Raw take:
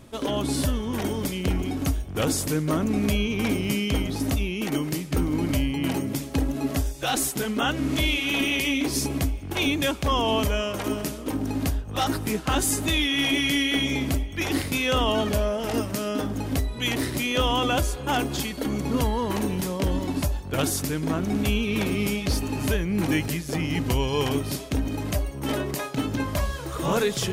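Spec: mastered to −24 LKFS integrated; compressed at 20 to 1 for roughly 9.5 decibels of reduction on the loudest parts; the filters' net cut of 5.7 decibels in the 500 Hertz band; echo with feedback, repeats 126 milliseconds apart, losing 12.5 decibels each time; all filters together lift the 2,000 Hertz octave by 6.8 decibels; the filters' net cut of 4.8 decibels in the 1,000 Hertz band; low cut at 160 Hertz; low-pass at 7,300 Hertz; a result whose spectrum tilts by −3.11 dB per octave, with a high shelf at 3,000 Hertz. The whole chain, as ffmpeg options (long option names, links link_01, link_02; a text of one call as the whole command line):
ffmpeg -i in.wav -af "highpass=160,lowpass=7300,equalizer=frequency=500:width_type=o:gain=-6,equalizer=frequency=1000:width_type=o:gain=-7.5,equalizer=frequency=2000:width_type=o:gain=8.5,highshelf=frequency=3000:gain=4.5,acompressor=threshold=-25dB:ratio=20,aecho=1:1:126|252|378:0.237|0.0569|0.0137,volume=5dB" out.wav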